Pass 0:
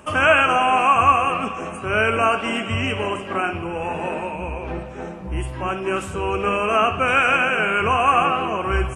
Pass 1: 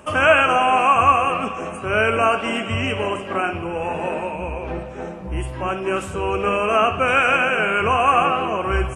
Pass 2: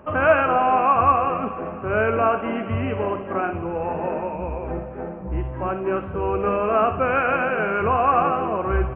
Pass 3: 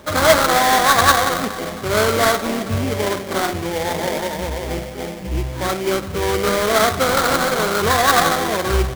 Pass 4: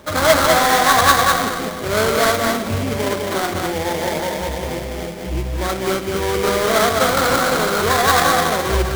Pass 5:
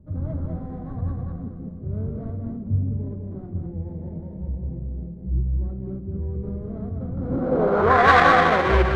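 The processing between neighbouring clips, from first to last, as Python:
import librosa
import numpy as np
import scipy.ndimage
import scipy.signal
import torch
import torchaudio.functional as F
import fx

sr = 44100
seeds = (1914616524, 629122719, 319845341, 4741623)

y1 = fx.peak_eq(x, sr, hz=560.0, db=3.0, octaves=0.66)
y2 = scipy.ndimage.gaussian_filter1d(y1, 4.6, mode='constant')
y3 = fx.sample_hold(y2, sr, seeds[0], rate_hz=2700.0, jitter_pct=20)
y3 = y3 * 10.0 ** (3.5 / 20.0)
y4 = y3 + 10.0 ** (-3.5 / 20.0) * np.pad(y3, (int(205 * sr / 1000.0), 0))[:len(y3)]
y4 = y4 * 10.0 ** (-1.0 / 20.0)
y5 = fx.filter_sweep_lowpass(y4, sr, from_hz=140.0, to_hz=2200.0, start_s=7.14, end_s=8.1, q=1.1)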